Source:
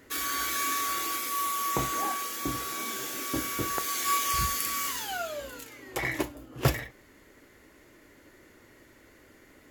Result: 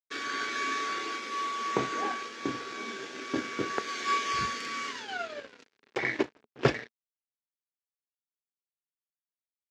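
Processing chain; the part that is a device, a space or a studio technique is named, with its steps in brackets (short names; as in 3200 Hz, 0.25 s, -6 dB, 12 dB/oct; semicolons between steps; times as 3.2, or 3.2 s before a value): blown loudspeaker (crossover distortion -40 dBFS; speaker cabinet 150–5400 Hz, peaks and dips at 230 Hz +6 dB, 420 Hz +9 dB, 1600 Hz +5 dB, 2300 Hz +3 dB)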